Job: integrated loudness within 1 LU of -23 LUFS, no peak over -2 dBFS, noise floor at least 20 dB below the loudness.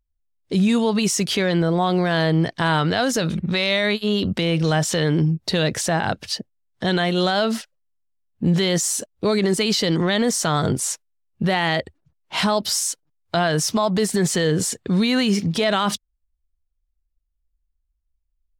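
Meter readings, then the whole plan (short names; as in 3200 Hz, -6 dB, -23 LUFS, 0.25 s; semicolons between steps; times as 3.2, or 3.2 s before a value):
loudness -21.0 LUFS; peak -8.5 dBFS; loudness target -23.0 LUFS
-> gain -2 dB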